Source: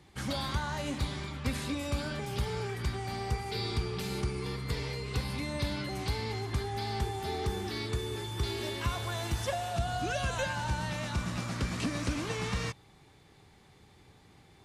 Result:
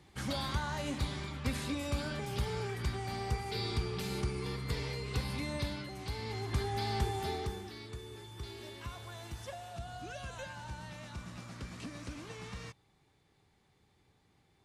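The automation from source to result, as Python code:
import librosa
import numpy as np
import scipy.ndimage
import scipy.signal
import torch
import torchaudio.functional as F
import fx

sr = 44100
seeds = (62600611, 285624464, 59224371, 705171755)

y = fx.gain(x, sr, db=fx.line((5.54, -2.0), (5.96, -8.5), (6.62, 0.0), (7.23, 0.0), (7.76, -11.5)))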